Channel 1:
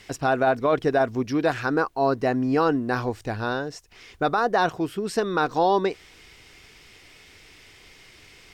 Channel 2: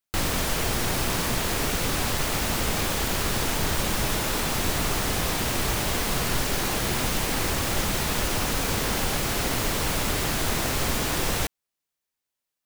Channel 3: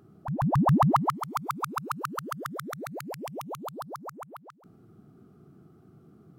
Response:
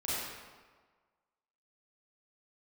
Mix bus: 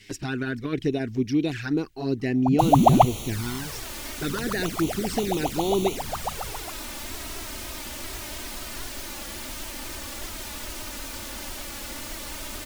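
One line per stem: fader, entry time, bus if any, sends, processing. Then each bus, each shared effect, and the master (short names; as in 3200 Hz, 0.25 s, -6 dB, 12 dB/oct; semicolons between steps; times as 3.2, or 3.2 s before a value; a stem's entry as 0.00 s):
+2.5 dB, 0.00 s, no send, band shelf 810 Hz -15 dB
-9.5 dB, 2.45 s, no send, high shelf 2300 Hz +5.5 dB
+2.5 dB, 2.20 s, muted 3.05–4.29, no send, one-sided fold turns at -18 dBFS; bell 740 Hz +13.5 dB 0.72 oct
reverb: off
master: envelope flanger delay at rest 11.4 ms, full sweep at -19.5 dBFS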